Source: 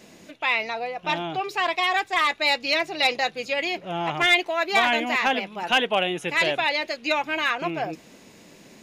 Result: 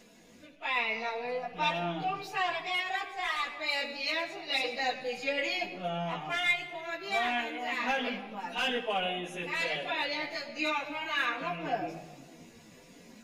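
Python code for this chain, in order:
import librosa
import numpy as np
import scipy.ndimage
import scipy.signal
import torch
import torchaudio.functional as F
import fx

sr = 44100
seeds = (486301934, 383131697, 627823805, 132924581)

y = fx.low_shelf(x, sr, hz=66.0, db=12.0)
y = fx.room_shoebox(y, sr, seeds[0], volume_m3=3600.0, walls='furnished', distance_m=1.8)
y = fx.rider(y, sr, range_db=10, speed_s=0.5)
y = fx.low_shelf(y, sr, hz=170.0, db=-5.0)
y = fx.stretch_vocoder_free(y, sr, factor=1.5)
y = y * 10.0 ** (-7.0 / 20.0)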